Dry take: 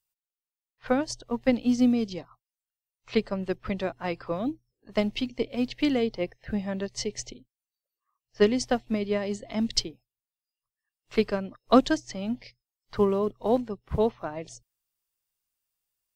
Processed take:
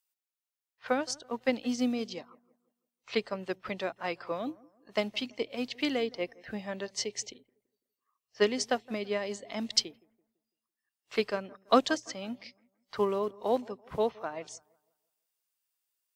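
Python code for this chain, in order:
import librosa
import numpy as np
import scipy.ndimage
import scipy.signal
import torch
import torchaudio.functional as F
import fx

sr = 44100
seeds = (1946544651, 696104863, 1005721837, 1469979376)

y = fx.highpass(x, sr, hz=600.0, slope=6)
y = fx.echo_bbd(y, sr, ms=167, stages=2048, feedback_pct=37, wet_db=-23)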